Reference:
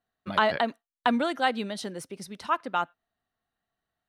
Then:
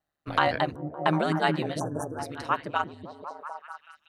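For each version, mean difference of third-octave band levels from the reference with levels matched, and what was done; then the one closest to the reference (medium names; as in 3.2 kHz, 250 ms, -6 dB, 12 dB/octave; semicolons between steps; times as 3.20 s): 8.5 dB: on a send: repeats whose band climbs or falls 188 ms, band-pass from 180 Hz, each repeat 0.7 oct, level -0.5 dB; on the sum: spectral selection erased 1.79–2.19 s, 1.7–5.7 kHz; band-stop 3.4 kHz, Q 13; ring modulator 75 Hz; trim +2.5 dB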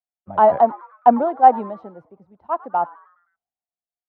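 12.0 dB: resonant low-pass 790 Hz, resonance Q 3.9; frequency-shifting echo 104 ms, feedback 57%, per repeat +130 Hz, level -20 dB; three bands expanded up and down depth 70%; trim +1.5 dB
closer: first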